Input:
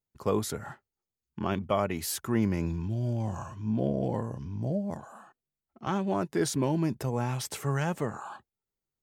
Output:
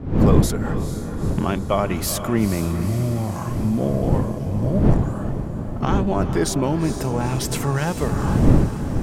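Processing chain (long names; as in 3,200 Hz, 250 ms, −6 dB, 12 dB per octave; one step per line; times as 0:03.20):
camcorder AGC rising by 14 dB per second
wind on the microphone 190 Hz −29 dBFS
feedback delay with all-pass diffusion 456 ms, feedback 62%, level −9.5 dB
level +6.5 dB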